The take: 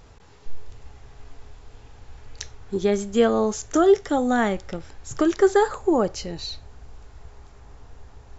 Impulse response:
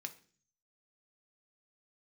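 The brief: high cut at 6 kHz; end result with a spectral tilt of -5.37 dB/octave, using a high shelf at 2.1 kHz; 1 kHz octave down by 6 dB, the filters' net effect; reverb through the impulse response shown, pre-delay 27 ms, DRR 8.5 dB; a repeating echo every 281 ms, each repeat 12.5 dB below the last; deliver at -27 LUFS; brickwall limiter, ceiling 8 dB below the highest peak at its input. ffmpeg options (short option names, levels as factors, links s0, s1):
-filter_complex "[0:a]lowpass=6000,equalizer=f=1000:t=o:g=-8,highshelf=f=2100:g=-4,alimiter=limit=0.15:level=0:latency=1,aecho=1:1:281|562|843:0.237|0.0569|0.0137,asplit=2[s0][s1];[1:a]atrim=start_sample=2205,adelay=27[s2];[s1][s2]afir=irnorm=-1:irlink=0,volume=0.501[s3];[s0][s3]amix=inputs=2:normalize=0"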